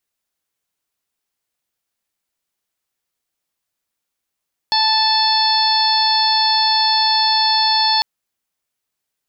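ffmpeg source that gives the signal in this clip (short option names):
-f lavfi -i "aevalsrc='0.141*sin(2*PI*877*t)+0.0473*sin(2*PI*1754*t)+0.0251*sin(2*PI*2631*t)+0.075*sin(2*PI*3508*t)+0.158*sin(2*PI*4385*t)+0.075*sin(2*PI*5262*t)':d=3.3:s=44100"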